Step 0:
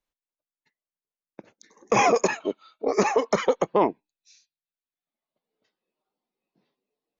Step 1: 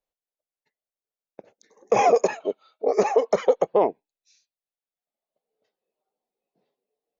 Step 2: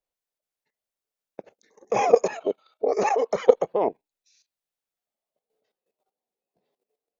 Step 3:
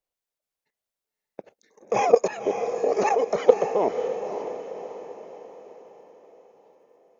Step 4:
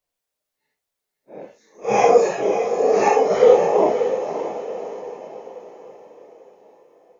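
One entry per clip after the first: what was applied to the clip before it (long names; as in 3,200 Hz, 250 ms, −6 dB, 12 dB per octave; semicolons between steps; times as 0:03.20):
flat-topped bell 570 Hz +9 dB 1.2 octaves; level −5.5 dB
output level in coarse steps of 14 dB; level +6.5 dB
feedback delay with all-pass diffusion 564 ms, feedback 48%, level −8.5 dB
random phases in long frames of 200 ms; level +6 dB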